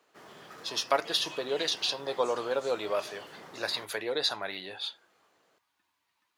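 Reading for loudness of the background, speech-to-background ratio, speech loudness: -46.5 LUFS, 15.0 dB, -31.5 LUFS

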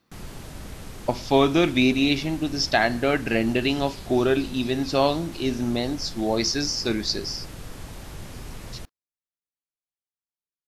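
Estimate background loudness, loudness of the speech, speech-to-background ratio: -40.5 LUFS, -23.5 LUFS, 17.0 dB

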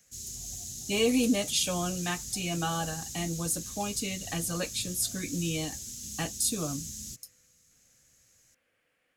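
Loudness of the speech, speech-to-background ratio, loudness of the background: -31.0 LUFS, 6.5 dB, -37.5 LUFS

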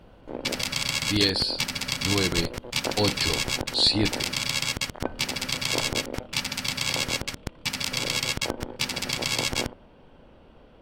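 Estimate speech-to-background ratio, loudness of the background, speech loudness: 1.5 dB, -27.5 LUFS, -26.0 LUFS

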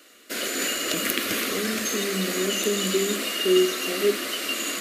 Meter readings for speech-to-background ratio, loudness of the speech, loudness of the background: -1.0 dB, -27.0 LUFS, -26.0 LUFS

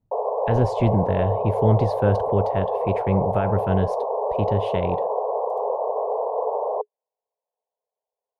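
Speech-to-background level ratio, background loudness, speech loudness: 1.0 dB, -25.0 LUFS, -24.0 LUFS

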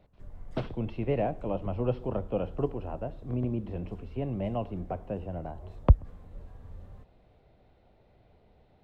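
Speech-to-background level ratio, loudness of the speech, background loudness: 17.5 dB, -32.5 LUFS, -50.0 LUFS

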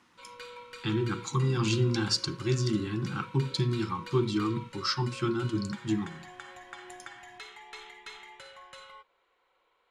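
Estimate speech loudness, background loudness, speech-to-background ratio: -30.0 LUFS, -46.5 LUFS, 16.5 dB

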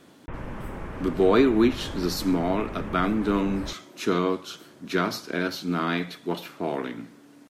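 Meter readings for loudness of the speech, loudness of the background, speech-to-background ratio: -26.0 LUFS, -37.5 LUFS, 11.5 dB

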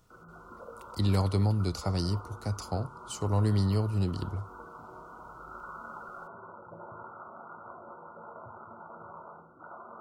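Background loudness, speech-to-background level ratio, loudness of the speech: -47.0 LUFS, 17.0 dB, -30.0 LUFS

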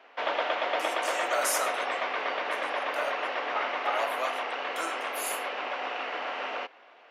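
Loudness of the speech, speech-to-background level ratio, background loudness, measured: -35.5 LUFS, -4.5 dB, -31.0 LUFS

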